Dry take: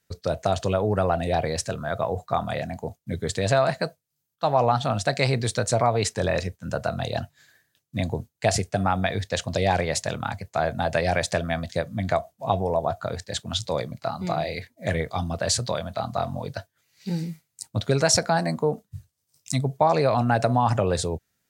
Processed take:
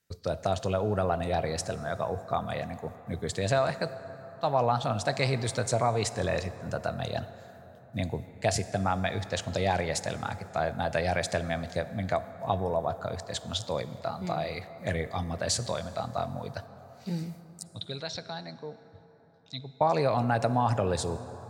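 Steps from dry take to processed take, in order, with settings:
0:17.63–0:19.81: transistor ladder low-pass 4,000 Hz, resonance 80%
convolution reverb RT60 4.5 s, pre-delay 38 ms, DRR 13.5 dB
level −5 dB

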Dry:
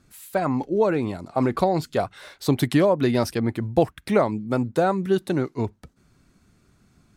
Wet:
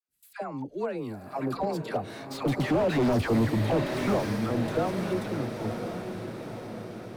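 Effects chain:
source passing by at 0:03.16, 15 m/s, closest 3.3 metres
noise gate with hold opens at −56 dBFS
in parallel at −3 dB: downward compressor, threshold −41 dBFS, peak gain reduction 21.5 dB
on the sum: all-pass dispersion lows, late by 93 ms, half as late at 790 Hz
gain into a clipping stage and back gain 27.5 dB
on a send: feedback delay with all-pass diffusion 1,004 ms, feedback 53%, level −7 dB
on the sum: slew-rate limiting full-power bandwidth 25 Hz
level +6.5 dB

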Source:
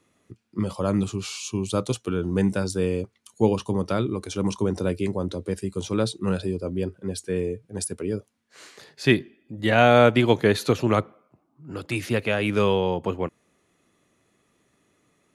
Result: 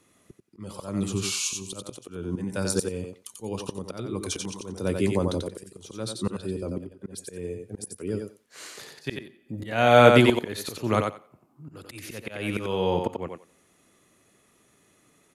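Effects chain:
high-shelf EQ 9,100 Hz +11.5 dB
volume swells 431 ms
0:06.52–0:07.03: output level in coarse steps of 11 dB
on a send: feedback echo with a high-pass in the loop 90 ms, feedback 16%, high-pass 220 Hz, level −4 dB
on the sum: downsampling to 32,000 Hz
level +2 dB

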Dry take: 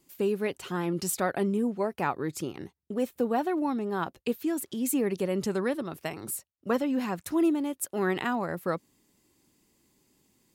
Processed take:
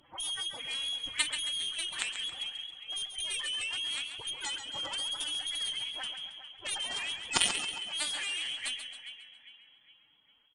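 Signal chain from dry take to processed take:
every frequency bin delayed by itself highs early, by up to 248 ms
Butterworth high-pass 180 Hz 48 dB per octave
in parallel at 0 dB: downward compressor 16 to 1, threshold −42 dBFS, peak gain reduction 21.5 dB
on the sum: phase-vocoder pitch shift with formants kept +8.5 semitones
voice inversion scrambler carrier 3,600 Hz
on a send: repeating echo 407 ms, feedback 41%, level −14.5 dB
on the sum: harmonic generator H 2 −36 dB, 3 −7 dB, 4 −34 dB, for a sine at −14 dBFS
feedback echo with a swinging delay time 136 ms, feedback 45%, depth 54 cents, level −9 dB
level +6 dB

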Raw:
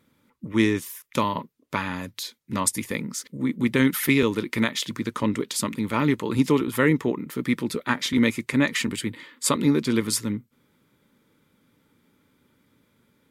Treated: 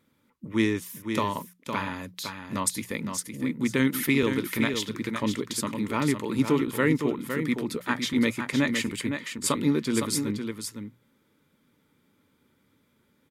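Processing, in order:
mains-hum notches 60/120/180 Hz
single-tap delay 511 ms −7 dB
level −3.5 dB

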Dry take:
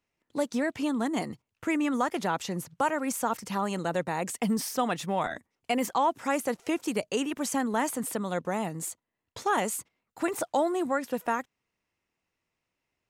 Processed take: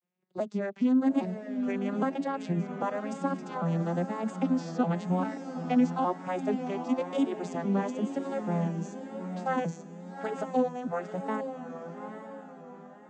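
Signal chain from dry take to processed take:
vocoder with an arpeggio as carrier minor triad, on F3, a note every 402 ms
feedback delay with all-pass diffusion 832 ms, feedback 42%, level −7.5 dB
pitch vibrato 1 Hz 89 cents

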